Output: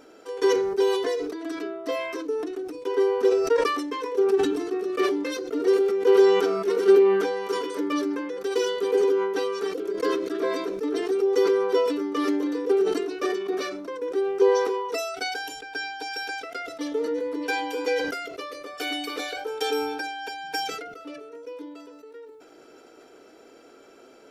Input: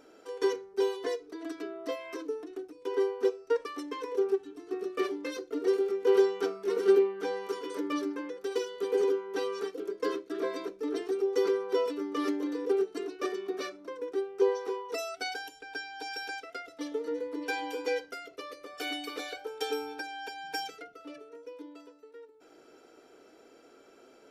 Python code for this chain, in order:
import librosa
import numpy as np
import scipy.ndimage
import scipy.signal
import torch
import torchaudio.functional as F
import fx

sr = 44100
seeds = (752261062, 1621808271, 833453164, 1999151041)

y = fx.sustainer(x, sr, db_per_s=40.0)
y = F.gain(torch.from_numpy(y), 5.5).numpy()